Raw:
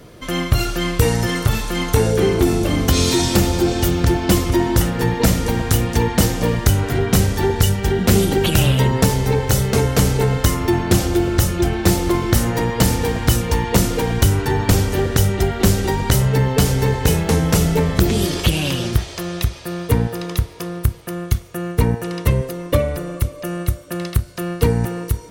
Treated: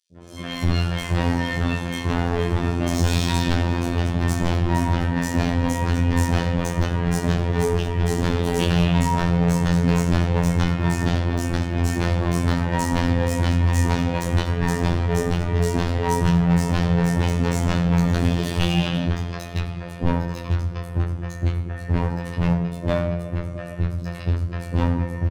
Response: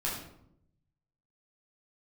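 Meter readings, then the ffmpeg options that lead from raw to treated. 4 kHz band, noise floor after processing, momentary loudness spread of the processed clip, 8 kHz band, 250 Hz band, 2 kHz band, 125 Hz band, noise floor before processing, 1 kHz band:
−7.5 dB, −33 dBFS, 6 LU, −11.0 dB, −3.0 dB, −3.5 dB, −3.0 dB, −34 dBFS, −3.0 dB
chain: -filter_complex "[0:a]equalizer=frequency=8600:width_type=o:width=0.96:gain=3.5,acrossover=split=280|960[link_01][link_02][link_03];[link_03]adynamicsmooth=sensitivity=1.5:basefreq=2200[link_04];[link_01][link_02][link_04]amix=inputs=3:normalize=0,acrossover=split=370|5100[link_05][link_06][link_07];[link_05]adelay=110[link_08];[link_06]adelay=160[link_09];[link_08][link_09][link_07]amix=inputs=3:normalize=0,afreqshift=25,flanger=delay=16.5:depth=7.7:speed=0.26,asoftclip=type=hard:threshold=-20.5dB,asplit=2[link_10][link_11];[1:a]atrim=start_sample=2205[link_12];[link_11][link_12]afir=irnorm=-1:irlink=0,volume=-6dB[link_13];[link_10][link_13]amix=inputs=2:normalize=0,afftfilt=real='hypot(re,im)*cos(PI*b)':imag='0':win_size=2048:overlap=0.75,volume=2.5dB"

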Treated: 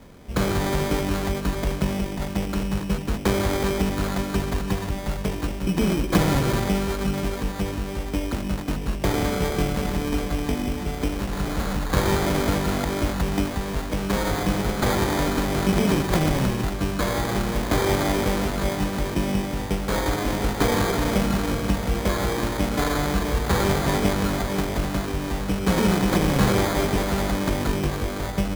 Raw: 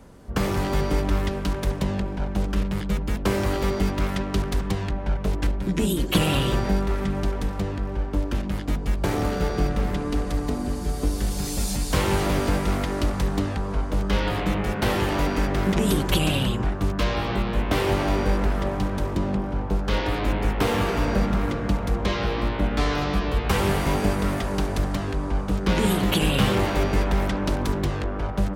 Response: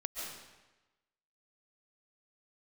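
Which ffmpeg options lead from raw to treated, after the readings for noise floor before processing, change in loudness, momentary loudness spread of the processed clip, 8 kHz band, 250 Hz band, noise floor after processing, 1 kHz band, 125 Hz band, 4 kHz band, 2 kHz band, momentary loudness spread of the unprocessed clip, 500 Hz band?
−30 dBFS, +0.5 dB, 7 LU, +3.0 dB, +1.5 dB, −30 dBFS, +1.0 dB, 0.0 dB, 0.0 dB, +1.5 dB, 6 LU, +1.5 dB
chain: -af "acrusher=samples=16:mix=1:aa=0.000001,bandreject=frequency=50:width_type=h:width=6,bandreject=frequency=100:width_type=h:width=6,volume=1.5dB"

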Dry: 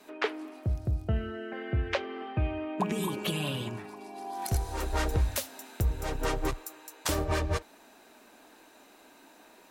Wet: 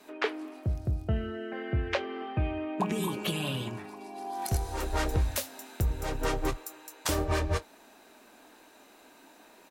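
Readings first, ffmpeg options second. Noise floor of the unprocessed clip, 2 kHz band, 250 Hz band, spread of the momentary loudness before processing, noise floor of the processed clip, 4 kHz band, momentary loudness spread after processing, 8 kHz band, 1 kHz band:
−57 dBFS, 0.0 dB, +0.5 dB, 9 LU, −57 dBFS, 0.0 dB, 9 LU, 0.0 dB, +0.5 dB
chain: -filter_complex "[0:a]asplit=2[link_01][link_02];[link_02]adelay=23,volume=-13.5dB[link_03];[link_01][link_03]amix=inputs=2:normalize=0"

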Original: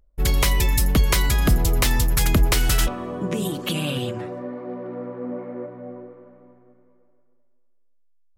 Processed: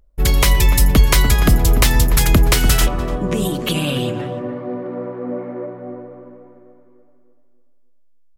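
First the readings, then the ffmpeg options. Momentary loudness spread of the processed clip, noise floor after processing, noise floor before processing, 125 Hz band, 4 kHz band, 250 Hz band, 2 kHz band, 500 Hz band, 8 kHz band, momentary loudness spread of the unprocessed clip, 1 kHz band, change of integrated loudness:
14 LU, −49 dBFS, −58 dBFS, +6.0 dB, +5.0 dB, +5.5 dB, +5.0 dB, +5.5 dB, +5.0 dB, 14 LU, +5.5 dB, +5.5 dB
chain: -filter_complex "[0:a]asplit=2[link_01][link_02];[link_02]adelay=293,lowpass=frequency=1100:poles=1,volume=-8.5dB,asplit=2[link_03][link_04];[link_04]adelay=293,lowpass=frequency=1100:poles=1,volume=0.38,asplit=2[link_05][link_06];[link_06]adelay=293,lowpass=frequency=1100:poles=1,volume=0.38,asplit=2[link_07][link_08];[link_08]adelay=293,lowpass=frequency=1100:poles=1,volume=0.38[link_09];[link_01][link_03][link_05][link_07][link_09]amix=inputs=5:normalize=0,volume=5dB"

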